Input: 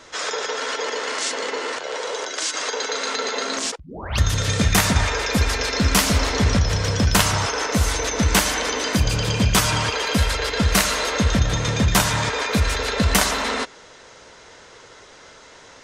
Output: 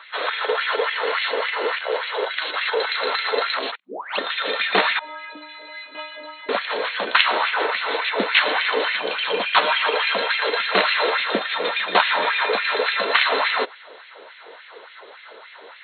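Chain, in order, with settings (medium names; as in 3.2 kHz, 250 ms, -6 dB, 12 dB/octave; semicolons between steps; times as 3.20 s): FFT band-pass 180–4300 Hz; LFO high-pass sine 3.5 Hz 390–2300 Hz; 4.99–6.49 s: inharmonic resonator 300 Hz, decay 0.46 s, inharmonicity 0.008; trim +1 dB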